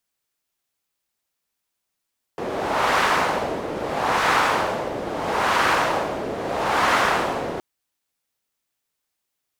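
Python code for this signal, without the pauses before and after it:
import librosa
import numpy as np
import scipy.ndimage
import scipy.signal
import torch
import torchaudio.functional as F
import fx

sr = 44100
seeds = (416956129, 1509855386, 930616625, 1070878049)

y = fx.wind(sr, seeds[0], length_s=5.22, low_hz=480.0, high_hz=1200.0, q=1.3, gusts=4, swing_db=10)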